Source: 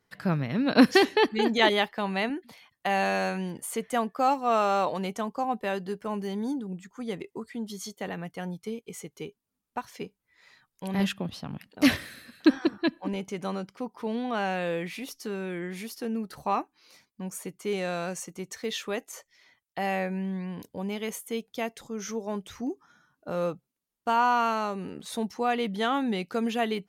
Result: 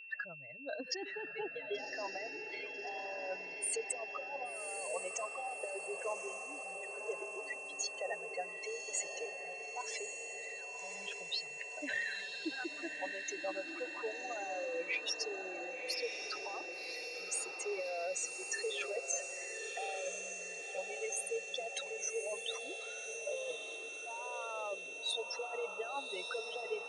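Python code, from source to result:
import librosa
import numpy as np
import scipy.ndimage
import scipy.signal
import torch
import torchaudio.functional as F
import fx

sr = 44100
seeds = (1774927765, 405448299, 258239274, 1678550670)

p1 = fx.spec_expand(x, sr, power=2.7)
p2 = scipy.signal.sosfilt(scipy.signal.ellip(3, 1.0, 40, [590.0, 8300.0], 'bandpass', fs=sr, output='sos'), p1)
p3 = fx.peak_eq(p2, sr, hz=1000.0, db=-8.0, octaves=1.3)
p4 = fx.over_compress(p3, sr, threshold_db=-43.0, ratio=-1.0)
p5 = p4 + 10.0 ** (-51.0 / 20.0) * np.sin(2.0 * np.pi * 2700.0 * np.arange(len(p4)) / sr)
p6 = p5 + fx.echo_diffused(p5, sr, ms=1123, feedback_pct=59, wet_db=-6.0, dry=0)
y = p6 * librosa.db_to_amplitude(2.0)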